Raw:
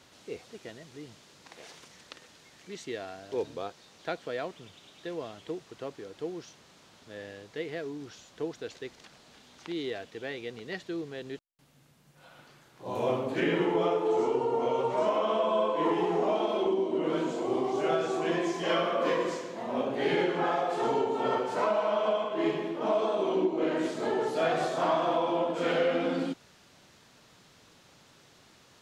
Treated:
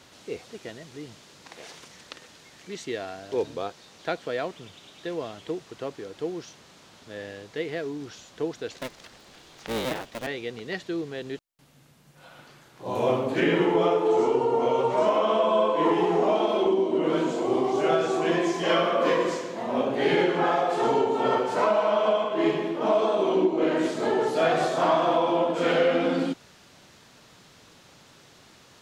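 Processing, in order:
0:08.78–0:10.27: sub-harmonics by changed cycles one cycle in 3, inverted
level +5 dB

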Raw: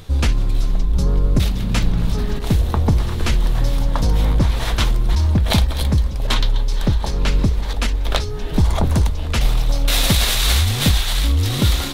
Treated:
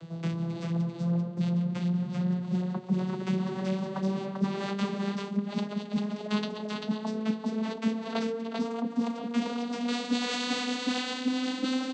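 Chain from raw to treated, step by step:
vocoder with a gliding carrier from E3, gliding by +8 semitones
reversed playback
downward compressor 6 to 1, threshold −28 dBFS, peak gain reduction 17 dB
reversed playback
single-tap delay 392 ms −3.5 dB

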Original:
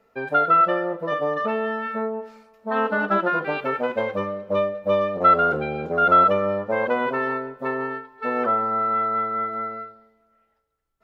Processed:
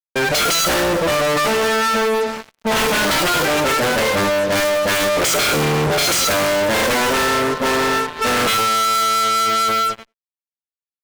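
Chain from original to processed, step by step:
wrap-around overflow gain 16 dB
tuned comb filter 150 Hz, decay 0.6 s, harmonics all, mix 70%
fuzz pedal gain 52 dB, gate −57 dBFS
far-end echo of a speakerphone 90 ms, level −29 dB
level −3 dB

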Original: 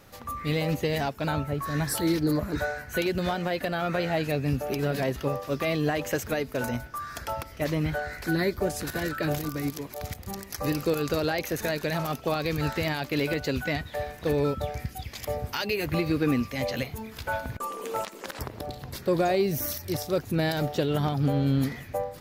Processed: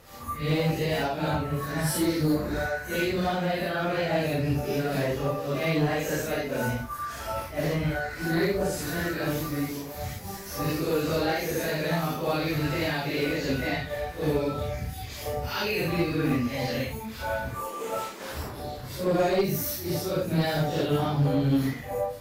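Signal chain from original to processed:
random phases in long frames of 200 ms
asymmetric clip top −21 dBFS
level +1 dB

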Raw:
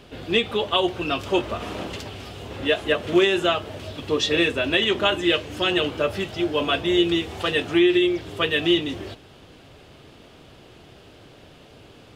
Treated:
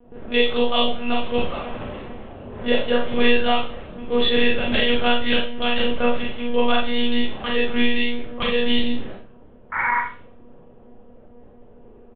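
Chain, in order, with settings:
sound drawn into the spectrogram noise, 0:09.72–0:10.00, 830–2,300 Hz −22 dBFS
comb filter 7 ms, depth 65%
low-pass that shuts in the quiet parts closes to 670 Hz, open at −18 dBFS
one-pitch LPC vocoder at 8 kHz 240 Hz
four-comb reverb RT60 0.34 s, combs from 29 ms, DRR −1.5 dB
level −4 dB

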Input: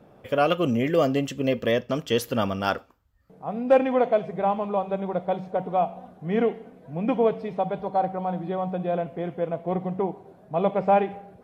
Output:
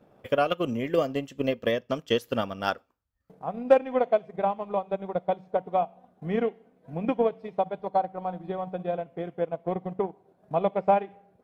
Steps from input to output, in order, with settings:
low-shelf EQ 130 Hz −4 dB
transient designer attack +7 dB, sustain −8 dB
level −5.5 dB

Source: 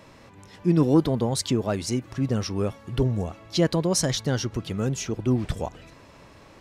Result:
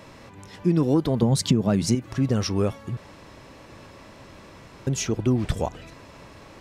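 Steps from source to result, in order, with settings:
0:01.22–0:01.95: parametric band 170 Hz +14 dB 1.1 octaves
downward compressor 4 to 1, threshold −21 dBFS, peak gain reduction 9 dB
0:02.97–0:04.87: fill with room tone
level +4 dB

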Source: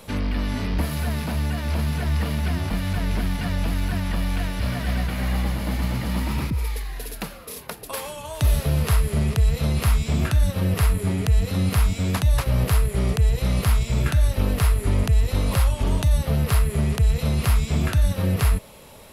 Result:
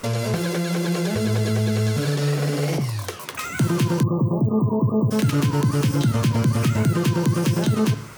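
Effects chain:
spring reverb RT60 1.1 s, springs 33/43 ms, DRR 10 dB
time-frequency box erased 0:09.43–0:11.95, 520–7,400 Hz
in parallel at +3 dB: downward compressor, threshold −26 dBFS, peak gain reduction 12.5 dB
on the sum: wrong playback speed 33 rpm record played at 78 rpm
level −4 dB

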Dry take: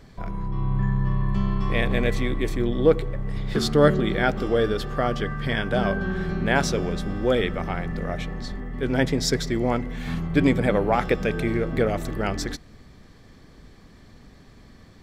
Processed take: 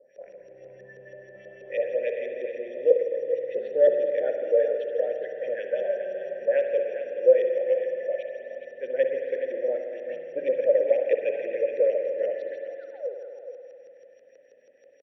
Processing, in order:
sound drawn into the spectrogram fall, 0:12.75–0:13.15, 350–2,000 Hz −33 dBFS
parametric band 560 Hz +13 dB 0.3 octaves
phaser with its sweep stopped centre 2,800 Hz, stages 4
steady tone 5,700 Hz −31 dBFS
auto-filter low-pass saw up 6.2 Hz 430–4,300 Hz
formant filter e
bass and treble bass −14 dB, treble −12 dB
single-tap delay 421 ms −10 dB
spring reverb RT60 2.6 s, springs 53 ms, chirp 30 ms, DRR 4 dB

